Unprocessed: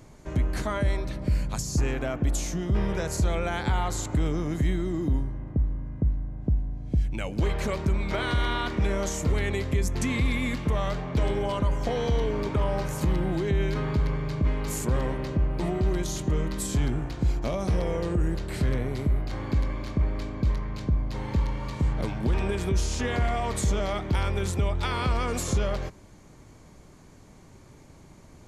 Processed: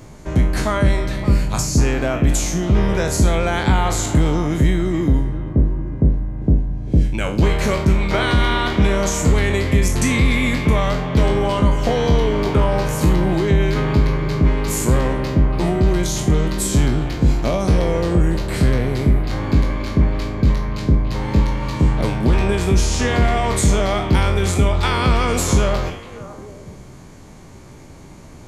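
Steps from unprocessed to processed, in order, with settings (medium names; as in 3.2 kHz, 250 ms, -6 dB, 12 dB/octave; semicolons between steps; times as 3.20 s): spectral sustain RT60 0.42 s; repeats whose band climbs or falls 285 ms, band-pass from 2.5 kHz, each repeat -1.4 oct, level -7.5 dB; trim +8.5 dB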